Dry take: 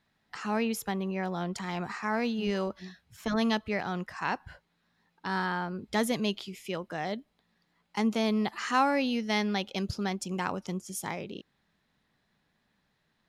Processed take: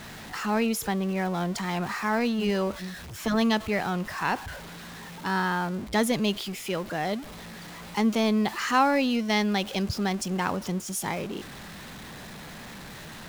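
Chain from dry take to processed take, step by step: jump at every zero crossing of -38 dBFS; tape noise reduction on one side only decoder only; trim +3 dB

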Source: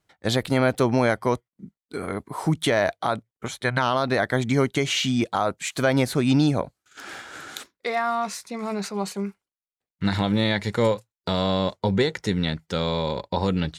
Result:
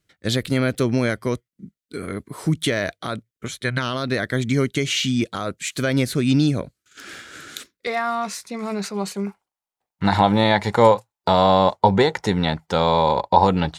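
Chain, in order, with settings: peaking EQ 840 Hz -14.5 dB 0.87 oct, from 7.87 s -3 dB, from 9.27 s +13.5 dB; trim +2.5 dB

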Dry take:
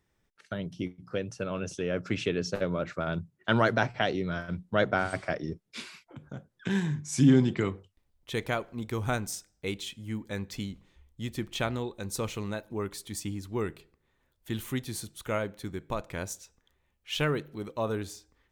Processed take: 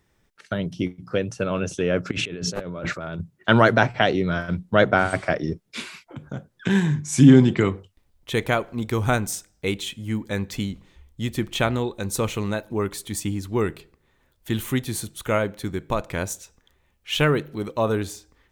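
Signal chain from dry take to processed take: dynamic bell 5 kHz, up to -5 dB, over -53 dBFS, Q 2.4; 2.11–3.21 s: compressor with a negative ratio -39 dBFS, ratio -1; trim +8.5 dB

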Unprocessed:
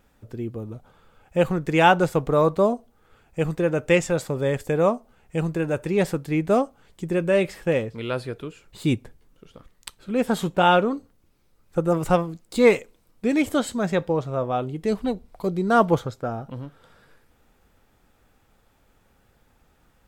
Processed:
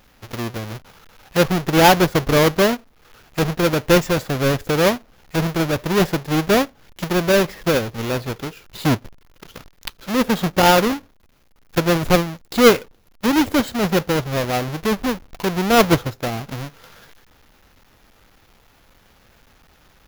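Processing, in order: square wave that keeps the level; peaking EQ 8.4 kHz -10.5 dB 0.3 oct; tape noise reduction on one side only encoder only

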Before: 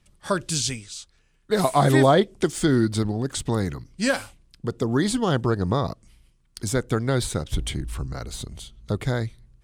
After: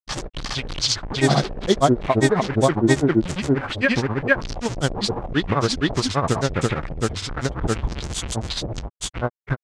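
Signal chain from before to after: one-bit delta coder 64 kbps, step -23.5 dBFS; LFO low-pass sine 0.61 Hz 540–7600 Hz; granulator 100 ms, grains 15 per s, spray 950 ms, pitch spread up and down by 0 st; trim +3 dB

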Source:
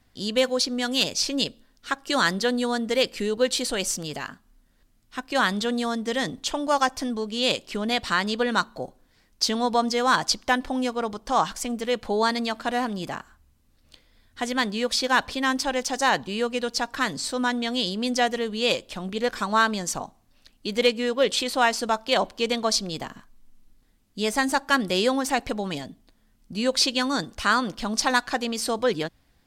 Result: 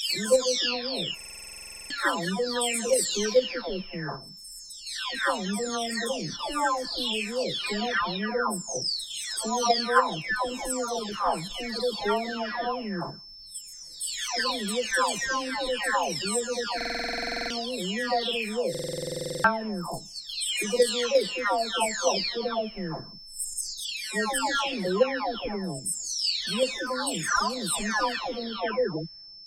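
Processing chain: delay that grows with frequency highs early, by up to 909 ms; dynamic bell 8.2 kHz, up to +8 dB, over -54 dBFS, Q 5; in parallel at -2 dB: level held to a coarse grid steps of 20 dB; on the sum: whistle 5.3 kHz -42 dBFS; buffer glitch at 1.16/16.76/18.70 s, samples 2048, times 15; trim -2 dB

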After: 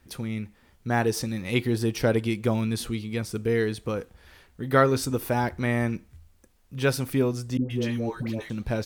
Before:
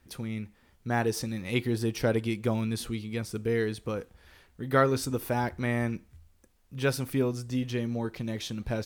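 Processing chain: 7.57–8.50 s: phase dispersion highs, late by 133 ms, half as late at 680 Hz; trim +3.5 dB

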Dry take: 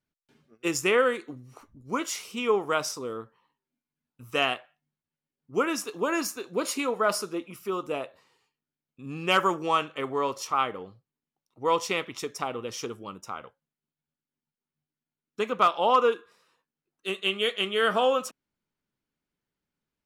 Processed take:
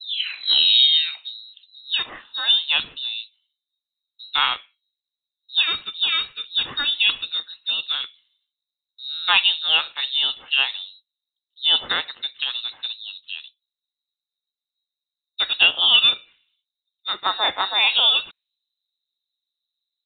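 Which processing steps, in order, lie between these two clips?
tape start-up on the opening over 1.55 s; level-controlled noise filter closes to 440 Hz, open at -22.5 dBFS; frequency inversion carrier 4 kHz; trim +5.5 dB

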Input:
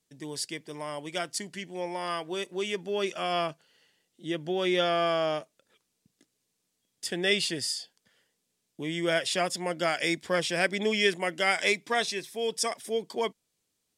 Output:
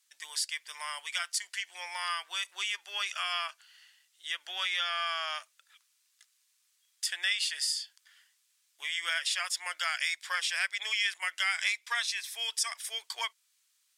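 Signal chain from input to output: high-pass 1.2 kHz 24 dB/octave; compression 2.5:1, threshold -38 dBFS, peak gain reduction 11 dB; trim +7 dB

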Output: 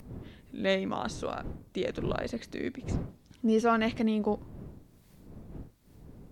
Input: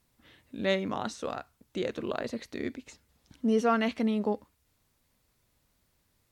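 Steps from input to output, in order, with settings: wind noise 200 Hz -43 dBFS; upward compressor, threshold -47 dBFS

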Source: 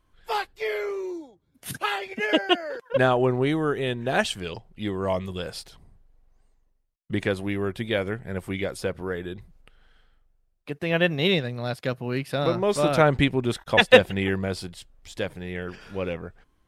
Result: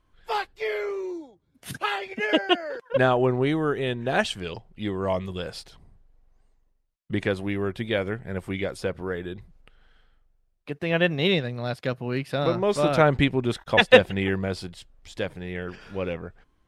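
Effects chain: treble shelf 9.7 kHz -10 dB

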